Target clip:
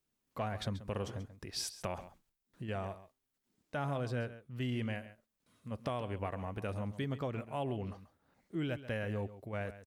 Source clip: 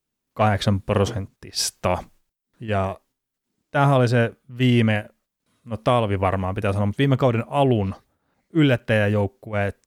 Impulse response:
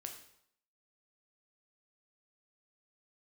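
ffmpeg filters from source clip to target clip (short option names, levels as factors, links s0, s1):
-af "acompressor=threshold=0.0112:ratio=2.5,aecho=1:1:135:0.2,volume=0.668"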